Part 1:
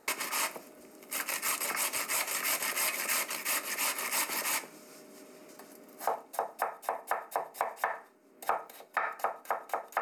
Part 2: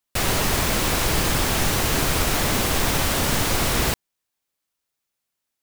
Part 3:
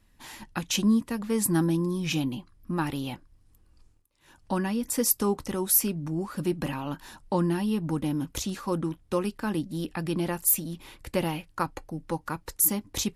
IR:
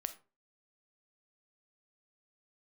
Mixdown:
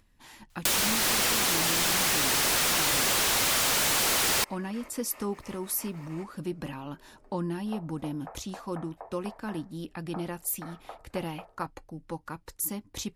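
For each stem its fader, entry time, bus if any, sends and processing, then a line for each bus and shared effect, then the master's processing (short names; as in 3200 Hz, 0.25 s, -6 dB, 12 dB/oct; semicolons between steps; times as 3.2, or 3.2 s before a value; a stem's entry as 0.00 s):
-9.0 dB, 1.65 s, no send, band-pass 410 Hz, Q 0.57
-2.5 dB, 0.50 s, no send, weighting filter A; reverb removal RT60 0.88 s; sine folder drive 15 dB, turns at -13.5 dBFS
-6.0 dB, 0.00 s, no send, high shelf 10000 Hz -4.5 dB; upward compressor, threshold -53 dBFS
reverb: off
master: compressor 6:1, threshold -24 dBFS, peak gain reduction 8 dB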